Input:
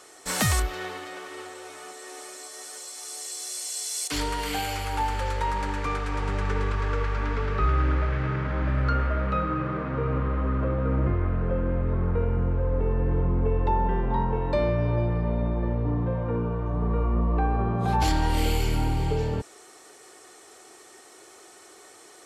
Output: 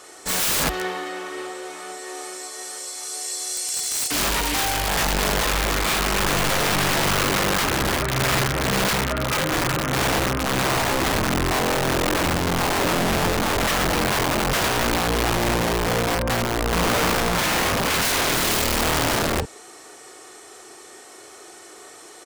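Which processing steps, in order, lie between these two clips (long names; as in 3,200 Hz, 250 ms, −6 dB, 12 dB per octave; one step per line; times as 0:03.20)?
double-tracking delay 38 ms −4 dB
wrap-around overflow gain 21.5 dB
level +5 dB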